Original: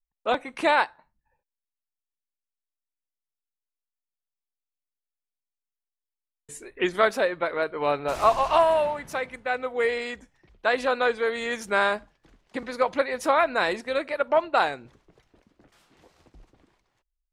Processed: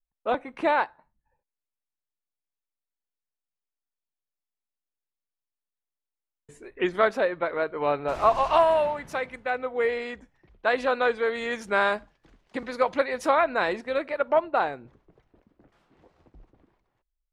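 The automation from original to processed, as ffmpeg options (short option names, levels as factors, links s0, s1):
-af "asetnsamples=n=441:p=0,asendcmd='6.64 lowpass f 2200;8.35 lowpass f 4700;9.5 lowpass f 2100;10.67 lowpass f 3600;11.87 lowpass f 6000;13.35 lowpass f 2400;14.39 lowpass f 1100',lowpass=f=1300:p=1"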